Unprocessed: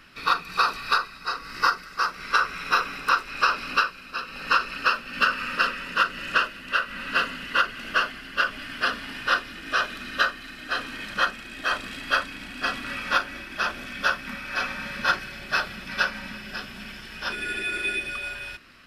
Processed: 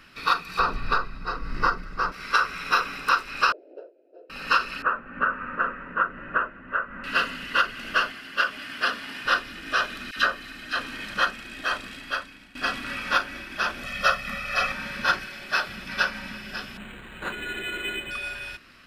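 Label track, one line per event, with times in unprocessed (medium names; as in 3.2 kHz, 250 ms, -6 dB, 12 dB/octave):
0.590000	2.120000	tilt EQ -4 dB/octave
3.520000	4.300000	elliptic band-pass 330–670 Hz
4.820000	7.040000	low-pass 1.6 kHz 24 dB/octave
8.120000	9.250000	high-pass 230 Hz 6 dB/octave
10.110000	10.790000	phase dispersion lows, late by 55 ms, half as late at 1.1 kHz
11.520000	12.550000	fade out, to -15.5 dB
13.830000	14.720000	comb 1.6 ms, depth 96%
15.250000	15.680000	peaking EQ 61 Hz -13.5 dB 2.3 oct
16.770000	18.110000	decimation joined by straight lines rate divided by 8×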